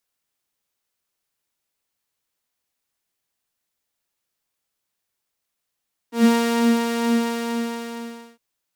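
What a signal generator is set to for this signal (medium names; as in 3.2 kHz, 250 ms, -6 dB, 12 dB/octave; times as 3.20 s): synth patch with filter wobble A#4, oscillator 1 saw, interval +12 st, sub -4 dB, filter highpass, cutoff 100 Hz, Q 4.2, filter envelope 1.5 oct, filter decay 0.12 s, filter sustain 25%, attack 138 ms, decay 0.55 s, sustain -4 dB, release 1.32 s, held 0.94 s, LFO 2.2 Hz, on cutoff 0.7 oct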